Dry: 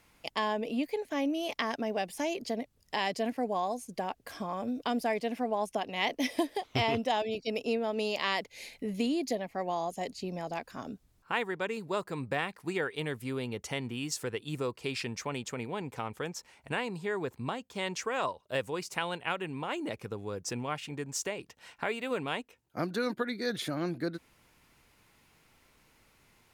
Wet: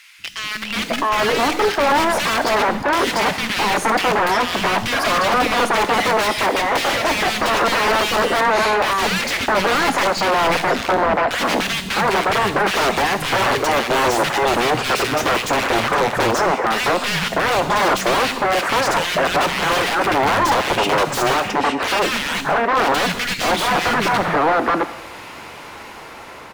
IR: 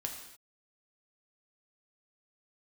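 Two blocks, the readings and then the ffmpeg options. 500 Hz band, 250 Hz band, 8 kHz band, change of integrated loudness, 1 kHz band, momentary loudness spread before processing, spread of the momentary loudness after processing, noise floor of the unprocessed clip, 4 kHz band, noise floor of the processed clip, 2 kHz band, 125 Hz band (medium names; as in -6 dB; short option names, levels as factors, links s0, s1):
+14.5 dB, +10.5 dB, +16.5 dB, +16.5 dB, +19.5 dB, 7 LU, 4 LU, -67 dBFS, +18.0 dB, -36 dBFS, +19.0 dB, +11.5 dB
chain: -filter_complex "[0:a]asplit=2[s0][s1];[s1]acompressor=threshold=0.00891:ratio=4,volume=0.794[s2];[s0][s2]amix=inputs=2:normalize=0,alimiter=limit=0.0668:level=0:latency=1:release=16,dynaudnorm=f=600:g=5:m=2,aeval=exprs='(mod(17.8*val(0)+1,2)-1)/17.8':c=same,acrossover=split=220|1900[s3][s4][s5];[s3]adelay=190[s6];[s4]adelay=660[s7];[s6][s7][s5]amix=inputs=3:normalize=0,asplit=2[s8][s9];[1:a]atrim=start_sample=2205[s10];[s9][s10]afir=irnorm=-1:irlink=0,volume=0.422[s11];[s8][s11]amix=inputs=2:normalize=0,asplit=2[s12][s13];[s13]highpass=f=720:p=1,volume=14.1,asoftclip=type=tanh:threshold=0.237[s14];[s12][s14]amix=inputs=2:normalize=0,lowpass=f=1400:p=1,volume=0.501,volume=2.24"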